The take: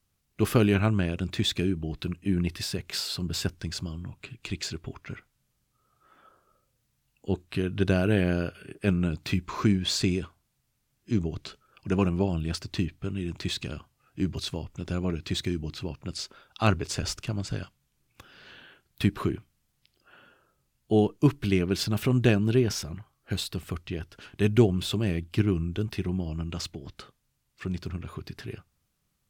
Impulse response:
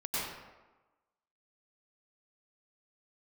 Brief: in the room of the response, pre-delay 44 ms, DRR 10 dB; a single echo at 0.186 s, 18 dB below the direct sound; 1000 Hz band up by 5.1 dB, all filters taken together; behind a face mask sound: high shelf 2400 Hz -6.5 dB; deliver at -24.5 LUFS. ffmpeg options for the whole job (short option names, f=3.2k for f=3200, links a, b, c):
-filter_complex "[0:a]equalizer=f=1k:t=o:g=8,aecho=1:1:186:0.126,asplit=2[a][b];[1:a]atrim=start_sample=2205,adelay=44[c];[b][c]afir=irnorm=-1:irlink=0,volume=-16dB[d];[a][d]amix=inputs=2:normalize=0,highshelf=f=2.4k:g=-6.5,volume=3.5dB"